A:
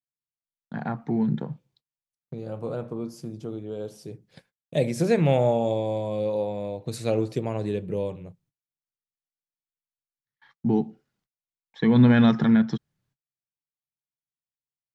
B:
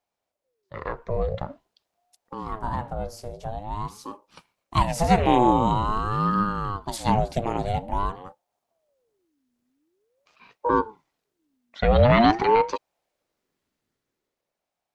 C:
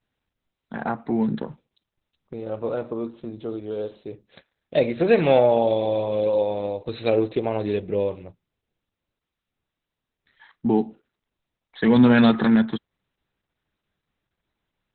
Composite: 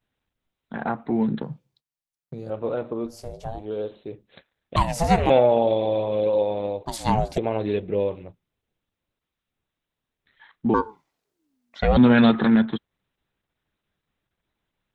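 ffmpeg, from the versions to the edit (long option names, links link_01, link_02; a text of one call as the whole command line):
ffmpeg -i take0.wav -i take1.wav -i take2.wav -filter_complex "[1:a]asplit=4[link_01][link_02][link_03][link_04];[2:a]asplit=6[link_05][link_06][link_07][link_08][link_09][link_10];[link_05]atrim=end=1.432[link_11];[0:a]atrim=start=1.428:end=2.502[link_12];[link_06]atrim=start=2.498:end=3.2[link_13];[link_01]atrim=start=3.04:end=3.68[link_14];[link_07]atrim=start=3.52:end=4.762[link_15];[link_02]atrim=start=4.758:end=5.302[link_16];[link_08]atrim=start=5.298:end=6.862[link_17];[link_03]atrim=start=6.858:end=7.382[link_18];[link_09]atrim=start=7.378:end=10.742[link_19];[link_04]atrim=start=10.738:end=11.972[link_20];[link_10]atrim=start=11.968[link_21];[link_11][link_12]acrossfade=duration=0.004:curve1=hsin:curve2=hsin[link_22];[link_22][link_13]acrossfade=duration=0.004:curve1=hsin:curve2=hsin[link_23];[link_23][link_14]acrossfade=duration=0.16:curve1=tri:curve2=tri[link_24];[link_24][link_15]acrossfade=duration=0.16:curve1=tri:curve2=tri[link_25];[link_25][link_16]acrossfade=duration=0.004:curve1=hsin:curve2=hsin[link_26];[link_26][link_17]acrossfade=duration=0.004:curve1=hsin:curve2=hsin[link_27];[link_27][link_18]acrossfade=duration=0.004:curve1=hsin:curve2=hsin[link_28];[link_28][link_19]acrossfade=duration=0.004:curve1=hsin:curve2=hsin[link_29];[link_29][link_20]acrossfade=duration=0.004:curve1=hsin:curve2=hsin[link_30];[link_30][link_21]acrossfade=duration=0.004:curve1=hsin:curve2=hsin" out.wav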